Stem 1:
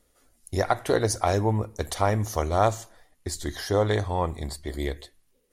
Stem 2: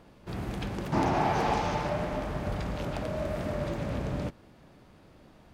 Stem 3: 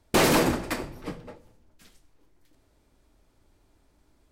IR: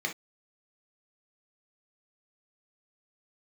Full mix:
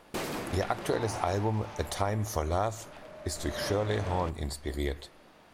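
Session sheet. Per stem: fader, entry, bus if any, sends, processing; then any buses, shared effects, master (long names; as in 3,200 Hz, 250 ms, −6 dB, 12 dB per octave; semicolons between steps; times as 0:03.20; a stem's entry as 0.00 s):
−1.5 dB, 0.00 s, no send, de-essing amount 55%
0:00.83 −8.5 dB → 0:01.56 −20.5 dB → 0:03.33 −20.5 dB → 0:03.66 −8 dB, 0.00 s, no send, mid-hump overdrive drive 18 dB, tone 6,700 Hz, clips at −14.5 dBFS
−10.5 dB, 0.00 s, no send, automatic ducking −7 dB, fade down 0.35 s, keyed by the first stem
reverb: not used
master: downward compressor 6 to 1, threshold −25 dBFS, peak gain reduction 8 dB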